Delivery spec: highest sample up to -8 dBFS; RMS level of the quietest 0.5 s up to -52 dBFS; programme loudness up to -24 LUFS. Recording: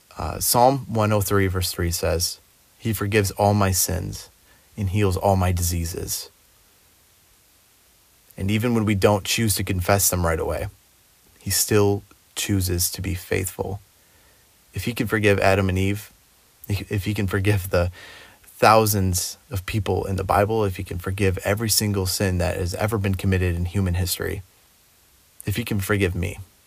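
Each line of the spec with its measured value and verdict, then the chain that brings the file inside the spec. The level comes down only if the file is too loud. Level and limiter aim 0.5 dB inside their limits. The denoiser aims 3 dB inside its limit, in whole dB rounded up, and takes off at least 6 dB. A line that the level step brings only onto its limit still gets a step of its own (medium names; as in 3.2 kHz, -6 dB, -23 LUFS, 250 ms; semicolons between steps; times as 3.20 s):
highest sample -3.0 dBFS: fail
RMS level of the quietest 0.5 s -57 dBFS: pass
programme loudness -22.0 LUFS: fail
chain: trim -2.5 dB; peak limiter -8.5 dBFS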